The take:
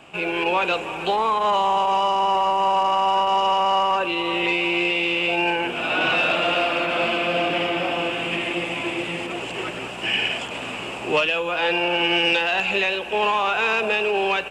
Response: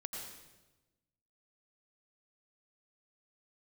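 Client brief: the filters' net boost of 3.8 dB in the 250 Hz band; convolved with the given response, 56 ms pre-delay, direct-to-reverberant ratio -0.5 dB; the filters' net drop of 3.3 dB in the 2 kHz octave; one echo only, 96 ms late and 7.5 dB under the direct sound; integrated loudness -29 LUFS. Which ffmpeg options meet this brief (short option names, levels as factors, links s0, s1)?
-filter_complex "[0:a]equalizer=f=250:t=o:g=6.5,equalizer=f=2000:t=o:g=-5,aecho=1:1:96:0.422,asplit=2[s0][s1];[1:a]atrim=start_sample=2205,adelay=56[s2];[s1][s2]afir=irnorm=-1:irlink=0,volume=1.19[s3];[s0][s3]amix=inputs=2:normalize=0,volume=0.282"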